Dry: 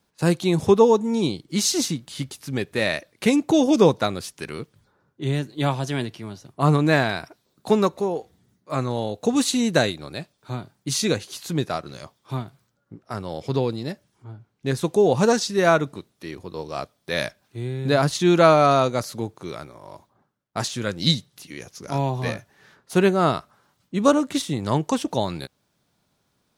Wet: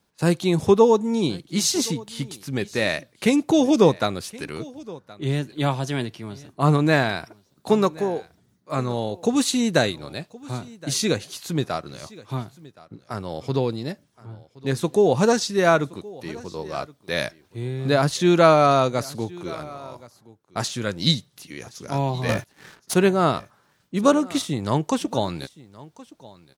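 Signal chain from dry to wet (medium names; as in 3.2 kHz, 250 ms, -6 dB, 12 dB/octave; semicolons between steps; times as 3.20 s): 22.29–22.94 s: waveshaping leveller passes 3; delay 1071 ms -21 dB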